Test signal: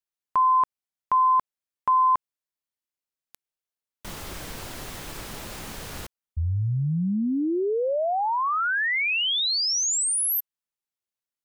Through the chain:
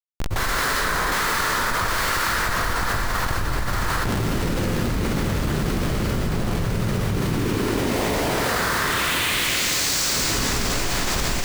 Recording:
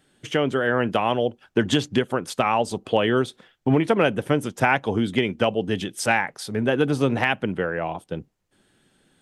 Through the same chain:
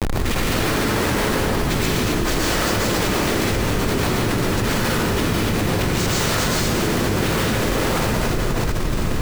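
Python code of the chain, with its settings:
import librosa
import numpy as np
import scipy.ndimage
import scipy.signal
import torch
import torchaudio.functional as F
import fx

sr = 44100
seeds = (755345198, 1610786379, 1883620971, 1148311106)

y = x + 0.5 * 10.0 ** (-25.0 / 20.0) * np.diff(np.sign(x), prepend=np.sign(x[:1]))
y = fx.noise_vocoder(y, sr, seeds[0], bands=6)
y = fx.schmitt(y, sr, flips_db=-31.5)
y = fx.echo_diffused(y, sr, ms=592, feedback_pct=78, wet_db=-13.0)
y = fx.rev_plate(y, sr, seeds[1], rt60_s=2.2, hf_ratio=0.7, predelay_ms=100, drr_db=-5.5)
y = fx.dynamic_eq(y, sr, hz=760.0, q=1.8, threshold_db=-34.0, ratio=4.0, max_db=-5)
y = fx.env_flatten(y, sr, amount_pct=100)
y = y * librosa.db_to_amplitude(-5.5)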